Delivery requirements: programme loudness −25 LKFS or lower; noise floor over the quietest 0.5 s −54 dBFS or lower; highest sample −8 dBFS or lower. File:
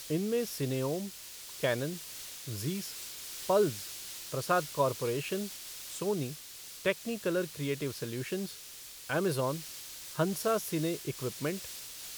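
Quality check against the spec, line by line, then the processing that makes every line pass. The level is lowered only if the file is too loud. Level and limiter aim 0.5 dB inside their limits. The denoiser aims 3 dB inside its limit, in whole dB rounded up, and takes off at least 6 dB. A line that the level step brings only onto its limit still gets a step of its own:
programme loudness −34.0 LKFS: in spec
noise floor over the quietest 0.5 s −48 dBFS: out of spec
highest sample −15.5 dBFS: in spec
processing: broadband denoise 9 dB, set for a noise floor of −48 dBFS

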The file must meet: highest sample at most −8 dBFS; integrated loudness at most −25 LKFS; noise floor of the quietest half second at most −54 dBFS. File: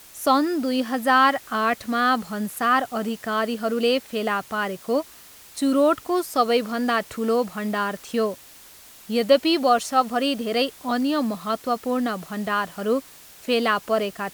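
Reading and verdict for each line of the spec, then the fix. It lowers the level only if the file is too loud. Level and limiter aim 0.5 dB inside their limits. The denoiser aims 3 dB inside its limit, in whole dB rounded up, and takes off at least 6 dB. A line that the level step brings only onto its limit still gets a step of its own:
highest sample −5.5 dBFS: out of spec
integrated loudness −23.0 LKFS: out of spec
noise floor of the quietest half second −47 dBFS: out of spec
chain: broadband denoise 8 dB, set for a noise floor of −47 dBFS
level −2.5 dB
brickwall limiter −8.5 dBFS

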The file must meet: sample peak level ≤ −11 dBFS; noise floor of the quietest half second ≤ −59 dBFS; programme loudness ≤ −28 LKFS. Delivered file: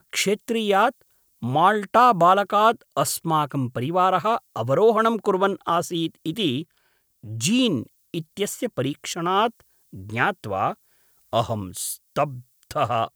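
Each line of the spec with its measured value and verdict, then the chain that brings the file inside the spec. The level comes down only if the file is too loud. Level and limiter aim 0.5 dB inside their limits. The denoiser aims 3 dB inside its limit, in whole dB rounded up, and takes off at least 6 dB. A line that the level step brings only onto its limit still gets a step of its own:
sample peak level −4.5 dBFS: out of spec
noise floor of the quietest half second −66 dBFS: in spec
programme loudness −22.5 LKFS: out of spec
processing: level −6 dB
brickwall limiter −11.5 dBFS

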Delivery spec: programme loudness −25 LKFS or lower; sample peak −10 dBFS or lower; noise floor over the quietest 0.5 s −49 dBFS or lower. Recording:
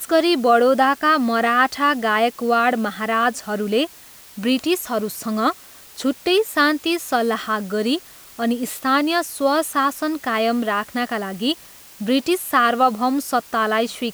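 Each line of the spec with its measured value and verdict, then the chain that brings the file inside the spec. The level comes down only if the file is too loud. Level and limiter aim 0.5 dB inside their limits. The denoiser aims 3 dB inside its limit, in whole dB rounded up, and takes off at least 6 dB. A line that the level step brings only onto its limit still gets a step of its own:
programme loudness −20.0 LKFS: out of spec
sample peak −4.5 dBFS: out of spec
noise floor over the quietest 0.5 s −44 dBFS: out of spec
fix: level −5.5 dB
brickwall limiter −10.5 dBFS

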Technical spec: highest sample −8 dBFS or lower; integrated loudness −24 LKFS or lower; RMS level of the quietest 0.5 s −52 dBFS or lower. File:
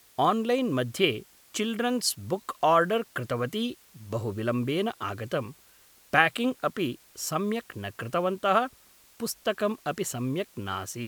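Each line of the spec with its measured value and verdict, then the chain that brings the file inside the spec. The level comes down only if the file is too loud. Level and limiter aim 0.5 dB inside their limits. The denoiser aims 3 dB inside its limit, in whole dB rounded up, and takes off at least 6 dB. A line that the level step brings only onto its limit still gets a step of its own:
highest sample −4.5 dBFS: out of spec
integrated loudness −28.5 LKFS: in spec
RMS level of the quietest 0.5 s −58 dBFS: in spec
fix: brickwall limiter −8.5 dBFS

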